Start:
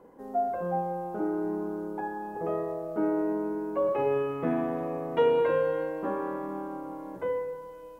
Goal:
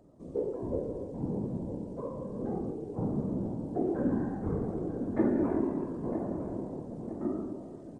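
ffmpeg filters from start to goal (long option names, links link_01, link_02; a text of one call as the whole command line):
ffmpeg -i in.wav -filter_complex "[0:a]asetrate=26990,aresample=44100,atempo=1.63392,afftfilt=real='hypot(re,im)*cos(2*PI*random(0))':imag='hypot(re,im)*sin(2*PI*random(1))':win_size=512:overlap=0.75,asplit=2[link_01][link_02];[link_02]adelay=958,lowpass=frequency=1200:poles=1,volume=-9.5dB,asplit=2[link_03][link_04];[link_04]adelay=958,lowpass=frequency=1200:poles=1,volume=0.54,asplit=2[link_05][link_06];[link_06]adelay=958,lowpass=frequency=1200:poles=1,volume=0.54,asplit=2[link_07][link_08];[link_08]adelay=958,lowpass=frequency=1200:poles=1,volume=0.54,asplit=2[link_09][link_10];[link_10]adelay=958,lowpass=frequency=1200:poles=1,volume=0.54,asplit=2[link_11][link_12];[link_12]adelay=958,lowpass=frequency=1200:poles=1,volume=0.54[link_13];[link_01][link_03][link_05][link_07][link_09][link_11][link_13]amix=inputs=7:normalize=0,volume=2dB" out.wav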